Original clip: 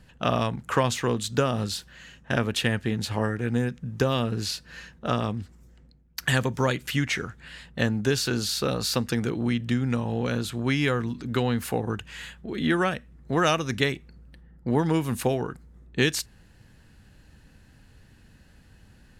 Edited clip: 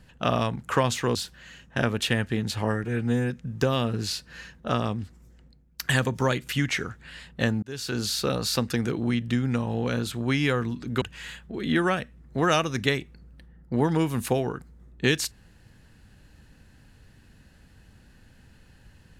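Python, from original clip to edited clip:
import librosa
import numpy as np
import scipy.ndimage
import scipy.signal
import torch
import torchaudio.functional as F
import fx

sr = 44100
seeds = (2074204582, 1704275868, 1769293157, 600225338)

y = fx.edit(x, sr, fx.cut(start_s=1.15, length_s=0.54),
    fx.stretch_span(start_s=3.38, length_s=0.31, factor=1.5),
    fx.fade_in_span(start_s=8.01, length_s=0.43),
    fx.cut(start_s=11.4, length_s=0.56), tone=tone)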